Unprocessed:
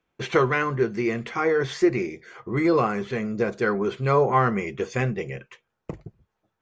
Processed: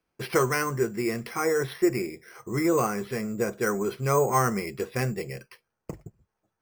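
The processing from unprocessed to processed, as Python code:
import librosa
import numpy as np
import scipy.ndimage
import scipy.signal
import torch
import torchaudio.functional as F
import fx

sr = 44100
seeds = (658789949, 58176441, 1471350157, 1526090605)

y = np.repeat(scipy.signal.resample_poly(x, 1, 6), 6)[:len(x)]
y = y * librosa.db_to_amplitude(-3.0)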